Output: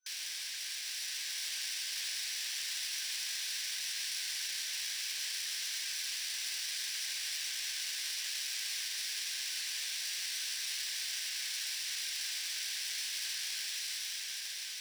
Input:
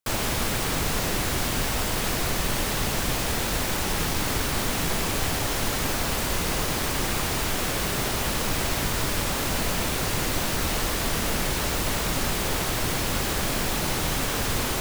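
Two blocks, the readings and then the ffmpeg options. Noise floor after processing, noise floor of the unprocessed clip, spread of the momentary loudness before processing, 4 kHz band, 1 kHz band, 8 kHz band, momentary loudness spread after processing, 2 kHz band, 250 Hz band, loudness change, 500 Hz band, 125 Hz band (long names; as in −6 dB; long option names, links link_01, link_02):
−41 dBFS, −27 dBFS, 0 LU, −5.5 dB, −31.5 dB, −7.5 dB, 2 LU, −11.5 dB, below −40 dB, −10.0 dB, below −35 dB, below −40 dB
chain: -af "afftfilt=real='re*between(b*sr/4096,1500,6100)':imag='im*between(b*sr/4096,1500,6100)':win_size=4096:overlap=0.75,aeval=exprs='clip(val(0),-1,0.0106)':channel_layout=same,aderivative,dynaudnorm=framelen=260:gausssize=9:maxgain=3dB"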